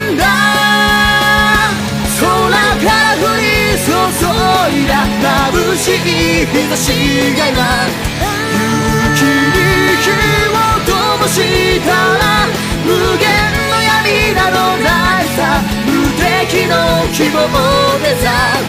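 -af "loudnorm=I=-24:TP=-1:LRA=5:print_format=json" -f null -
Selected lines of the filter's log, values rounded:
"input_i" : "-10.9",
"input_tp" : "-2.6",
"input_lra" : "1.3",
"input_thresh" : "-20.9",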